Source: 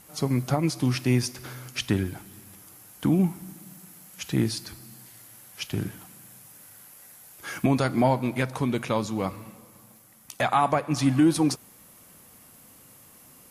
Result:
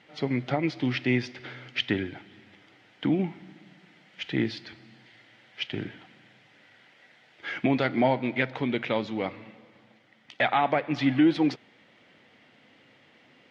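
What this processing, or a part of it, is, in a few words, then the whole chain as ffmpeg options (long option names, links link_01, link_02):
kitchen radio: -af "highpass=170,equalizer=frequency=180:width_type=q:width=4:gain=-6,equalizer=frequency=1100:width_type=q:width=4:gain=-9,equalizer=frequency=2000:width_type=q:width=4:gain=8,equalizer=frequency=3200:width_type=q:width=4:gain=5,lowpass=frequency=3800:width=0.5412,lowpass=frequency=3800:width=1.3066"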